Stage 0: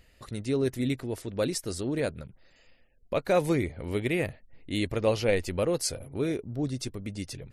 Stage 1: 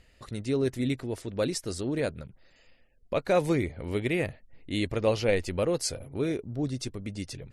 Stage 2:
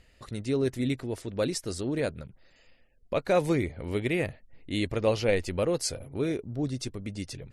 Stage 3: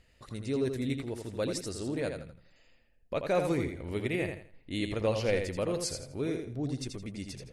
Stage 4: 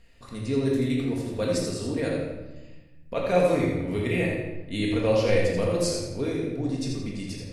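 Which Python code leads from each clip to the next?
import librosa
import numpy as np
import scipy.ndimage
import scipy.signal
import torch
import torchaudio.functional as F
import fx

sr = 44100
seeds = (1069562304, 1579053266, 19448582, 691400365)

y1 = scipy.signal.sosfilt(scipy.signal.butter(2, 10000.0, 'lowpass', fs=sr, output='sos'), x)
y2 = y1
y3 = fx.echo_feedback(y2, sr, ms=83, feedback_pct=28, wet_db=-6)
y3 = y3 * 10.0 ** (-4.5 / 20.0)
y4 = fx.room_shoebox(y3, sr, seeds[0], volume_m3=490.0, walls='mixed', distance_m=1.7)
y4 = y4 * 10.0 ** (1.5 / 20.0)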